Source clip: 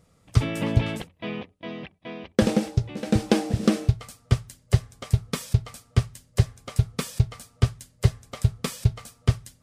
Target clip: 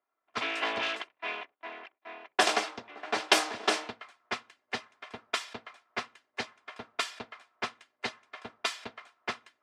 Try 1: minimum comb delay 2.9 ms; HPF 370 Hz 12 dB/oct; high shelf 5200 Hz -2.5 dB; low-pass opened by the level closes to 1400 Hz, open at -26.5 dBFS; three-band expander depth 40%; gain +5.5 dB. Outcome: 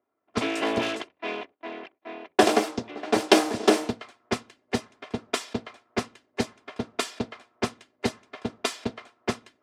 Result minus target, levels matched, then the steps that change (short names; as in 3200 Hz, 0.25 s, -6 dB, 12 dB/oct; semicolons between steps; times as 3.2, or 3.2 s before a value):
500 Hz band +6.0 dB
change: HPF 1000 Hz 12 dB/oct